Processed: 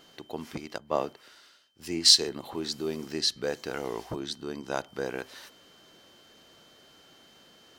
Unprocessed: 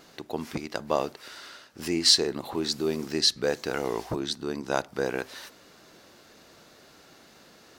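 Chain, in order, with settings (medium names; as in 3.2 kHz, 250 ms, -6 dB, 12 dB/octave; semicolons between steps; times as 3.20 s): whistle 3.1 kHz -54 dBFS; 0.78–2.29 s: three bands expanded up and down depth 70%; trim -4.5 dB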